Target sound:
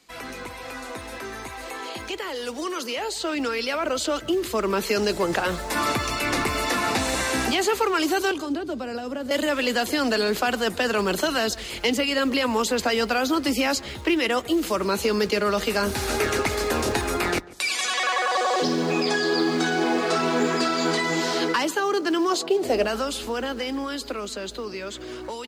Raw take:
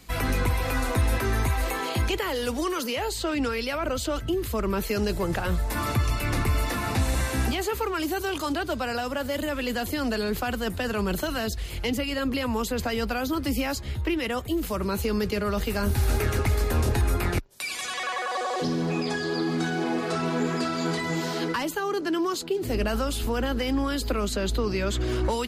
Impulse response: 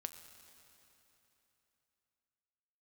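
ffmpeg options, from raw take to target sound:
-filter_complex "[0:a]acrusher=bits=8:mode=log:mix=0:aa=0.000001,asettb=1/sr,asplit=3[s0][s1][s2];[s0]atrim=end=8.314[s3];[s1]atrim=start=8.31:end=9.31,asetpts=PTS-STARTPTS,afade=t=in:d=0.004:c=qsin,afade=t=out:st=0.996:d=0.004:c=qsin,acrossover=split=440[s4][s5];[s5]acompressor=threshold=0.00708:ratio=6[s6];[s4][s6]amix=inputs=2:normalize=0[s7];[s2]atrim=start=9.306[s8];[s3][s7]acrossfade=d=0.004:c1=hsin:c2=qsin[s9];[s9][s8]acrossfade=d=0.004:c1=qsin:c2=hsin,acrossover=split=220 7900:gain=0.126 1 0.141[s10][s11][s12];[s10][s11][s12]amix=inputs=3:normalize=0,dynaudnorm=f=760:g=9:m=4.73,asplit=2[s13][s14];[s14]adelay=144,lowpass=f=1400:p=1,volume=0.112,asplit=2[s15][s16];[s16]adelay=144,lowpass=f=1400:p=1,volume=0.35,asplit=2[s17][s18];[s18]adelay=144,lowpass=f=1400:p=1,volume=0.35[s19];[s13][s15][s17][s19]amix=inputs=4:normalize=0,crystalizer=i=1:c=0,asettb=1/sr,asplit=3[s20][s21][s22];[s20]atrim=end=22.304[s23];[s21]atrim=start=22.3:end=22.86,asetpts=PTS-STARTPTS,afade=t=in:d=0.004:c=qsin,afade=t=out:st=0.556:d=0.004:c=qsin,equalizer=f=660:t=o:w=0.76:g=12[s24];[s22]atrim=start=22.856[s25];[s23][s24]acrossfade=d=0.004:c1=hsin:c2=qsin[s26];[s26][s25]acrossfade=d=0.004:c1=qsin:c2=hsin,volume=0.473"

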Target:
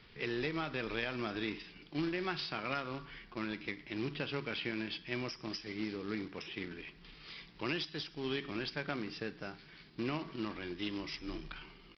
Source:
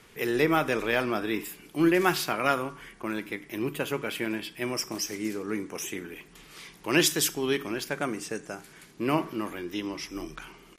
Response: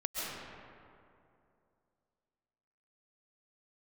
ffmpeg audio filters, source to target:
-af "equalizer=f=660:w=0.31:g=-9.5,acompressor=threshold=0.0224:ratio=16,atempo=0.9,aresample=11025,acrusher=bits=3:mode=log:mix=0:aa=0.000001,aresample=44100,volume=1.12"

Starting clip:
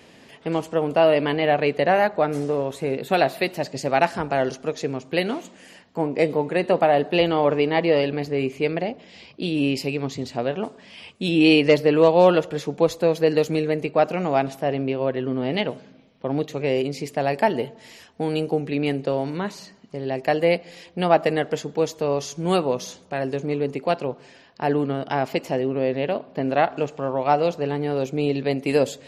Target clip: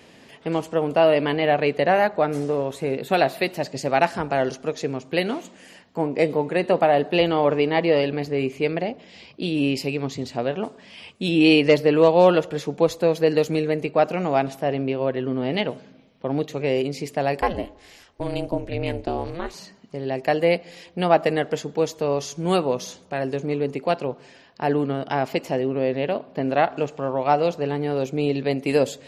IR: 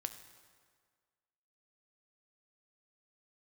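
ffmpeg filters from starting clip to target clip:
-filter_complex "[0:a]asettb=1/sr,asplit=3[s0][s1][s2];[s0]atrim=end=17.404[s3];[s1]atrim=start=17.4:end=19.54,asetpts=PTS-STARTPTS,afade=t=in:d=0.004:c=qsin,afade=t=out:st=2.136:d=0.004:c=qsin,aeval=exprs='val(0)*sin(2*PI*170*n/s)':c=same[s4];[s2]atrim=start=19.536[s5];[s3][s4]acrossfade=d=0.004:c1=hsin:c2=qsin[s6];[s6][s5]acrossfade=d=0.004:c1=qsin:c2=hsin"

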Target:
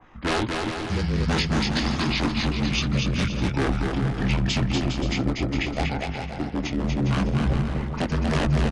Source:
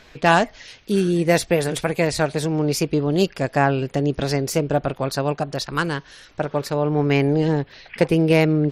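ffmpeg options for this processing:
-filter_complex "[0:a]flanger=delay=17:depth=5.1:speed=1.7,aeval=exprs='0.126*(abs(mod(val(0)/0.126+3,4)-2)-1)':c=same,afreqshift=-25,asetrate=22050,aresample=44100,atempo=2,asplit=2[s0][s1];[s1]aecho=0:1:240|408|525.6|607.9|665.5:0.631|0.398|0.251|0.158|0.1[s2];[s0][s2]amix=inputs=2:normalize=0,adynamicequalizer=threshold=0.00562:dfrequency=2100:dqfactor=0.7:tfrequency=2100:tqfactor=0.7:attack=5:release=100:ratio=0.375:range=3.5:mode=boostabove:tftype=highshelf"

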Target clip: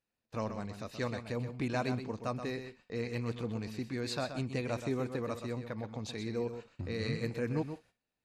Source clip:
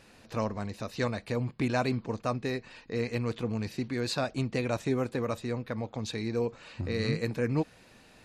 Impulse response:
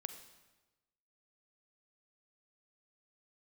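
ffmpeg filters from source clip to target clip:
-filter_complex "[0:a]agate=range=0.0398:threshold=0.00562:ratio=16:detection=peak,asplit=2[s0][s1];[1:a]atrim=start_sample=2205,atrim=end_sample=3087,adelay=126[s2];[s1][s2]afir=irnorm=-1:irlink=0,volume=0.531[s3];[s0][s3]amix=inputs=2:normalize=0,volume=0.531"

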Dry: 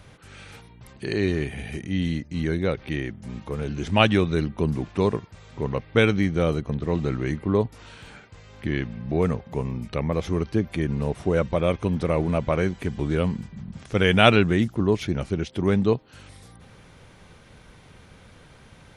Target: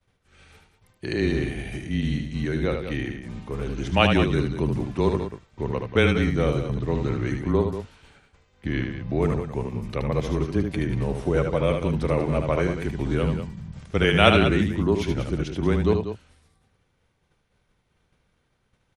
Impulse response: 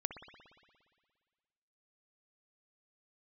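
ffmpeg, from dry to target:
-af "afreqshift=-20,agate=range=0.0224:threshold=0.0158:ratio=3:detection=peak,aecho=1:1:75.8|189.5:0.501|0.316,volume=0.891"

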